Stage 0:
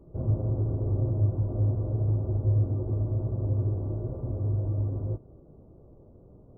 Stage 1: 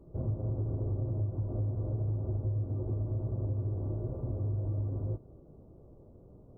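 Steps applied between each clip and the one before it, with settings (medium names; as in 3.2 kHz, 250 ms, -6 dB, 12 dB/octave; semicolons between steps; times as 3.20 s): compression, threshold -27 dBFS, peak gain reduction 8 dB; trim -2 dB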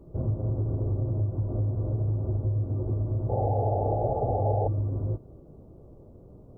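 painted sound noise, 3.29–4.68 s, 400–870 Hz -34 dBFS; trim +5 dB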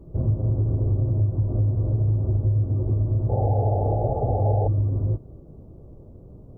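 bass shelf 250 Hz +7 dB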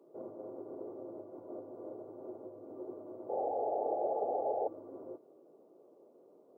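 high-pass 360 Hz 24 dB/octave; trim -6 dB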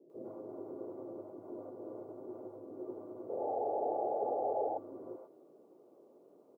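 bands offset in time lows, highs 100 ms, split 570 Hz; trim +2 dB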